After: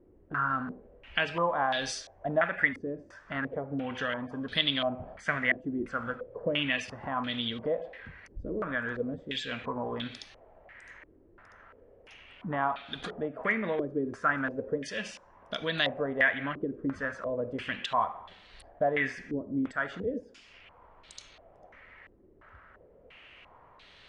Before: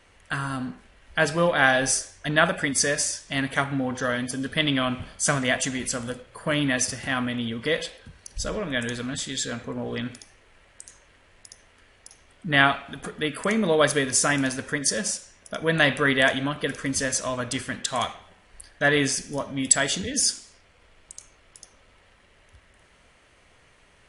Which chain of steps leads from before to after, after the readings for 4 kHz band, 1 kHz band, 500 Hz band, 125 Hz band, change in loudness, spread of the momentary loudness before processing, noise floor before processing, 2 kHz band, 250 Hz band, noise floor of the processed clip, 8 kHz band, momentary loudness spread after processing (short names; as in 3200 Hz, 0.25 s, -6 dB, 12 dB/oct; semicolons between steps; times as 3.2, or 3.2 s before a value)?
-6.5 dB, -4.0 dB, -6.0 dB, -10.0 dB, -7.5 dB, 12 LU, -58 dBFS, -6.5 dB, -7.5 dB, -59 dBFS, -25.0 dB, 16 LU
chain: low shelf 240 Hz -4 dB; compressor 2:1, threshold -37 dBFS, peak gain reduction 14 dB; stepped low-pass 2.9 Hz 350–3900 Hz